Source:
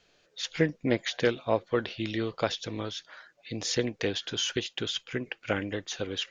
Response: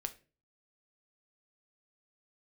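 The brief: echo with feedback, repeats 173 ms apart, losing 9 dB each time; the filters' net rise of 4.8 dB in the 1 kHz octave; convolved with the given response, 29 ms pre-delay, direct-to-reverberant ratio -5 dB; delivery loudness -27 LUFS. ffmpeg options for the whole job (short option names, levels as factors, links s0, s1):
-filter_complex "[0:a]equalizer=f=1000:t=o:g=6.5,aecho=1:1:173|346|519|692:0.355|0.124|0.0435|0.0152,asplit=2[s0][s1];[1:a]atrim=start_sample=2205,adelay=29[s2];[s1][s2]afir=irnorm=-1:irlink=0,volume=2.11[s3];[s0][s3]amix=inputs=2:normalize=0,volume=0.631"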